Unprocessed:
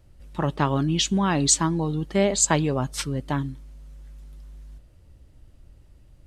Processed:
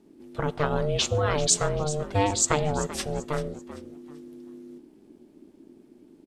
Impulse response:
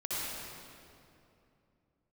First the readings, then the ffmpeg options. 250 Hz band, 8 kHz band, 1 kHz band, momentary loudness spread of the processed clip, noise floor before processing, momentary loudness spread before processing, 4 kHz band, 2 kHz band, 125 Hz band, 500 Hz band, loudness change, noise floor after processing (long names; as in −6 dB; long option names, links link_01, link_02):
−8.0 dB, −2.5 dB, −1.5 dB, 22 LU, −54 dBFS, 10 LU, −2.5 dB, −1.5 dB, −3.5 dB, +0.5 dB, −2.5 dB, −56 dBFS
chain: -filter_complex "[0:a]asplit=4[link_01][link_02][link_03][link_04];[link_02]adelay=388,afreqshift=-65,volume=-14.5dB[link_05];[link_03]adelay=776,afreqshift=-130,volume=-24.4dB[link_06];[link_04]adelay=1164,afreqshift=-195,volume=-34.3dB[link_07];[link_01][link_05][link_06][link_07]amix=inputs=4:normalize=0,asplit=2[link_08][link_09];[1:a]atrim=start_sample=2205,afade=type=out:start_time=0.29:duration=0.01,atrim=end_sample=13230,asetrate=70560,aresample=44100[link_10];[link_09][link_10]afir=irnorm=-1:irlink=0,volume=-22dB[link_11];[link_08][link_11]amix=inputs=2:normalize=0,aeval=exprs='val(0)*sin(2*PI*300*n/s)':channel_layout=same"